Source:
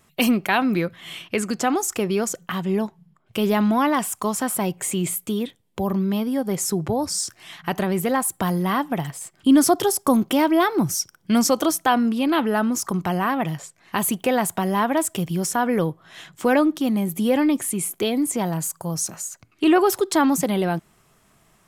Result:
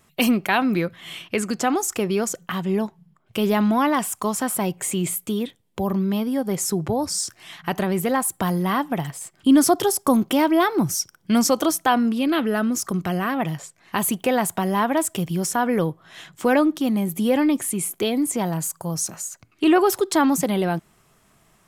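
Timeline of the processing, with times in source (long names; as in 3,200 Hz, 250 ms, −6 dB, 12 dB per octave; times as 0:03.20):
0:12.18–0:13.35: parametric band 910 Hz −9.5 dB 0.41 octaves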